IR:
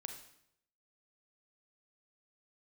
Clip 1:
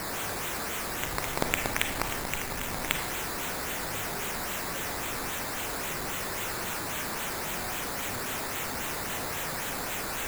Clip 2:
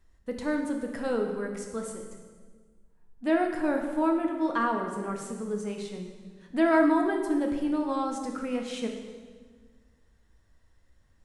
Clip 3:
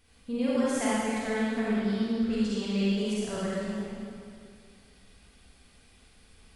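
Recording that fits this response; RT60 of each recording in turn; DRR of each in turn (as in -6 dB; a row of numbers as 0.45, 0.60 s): 1; 0.75, 1.6, 2.3 s; 4.5, 2.0, -8.5 dB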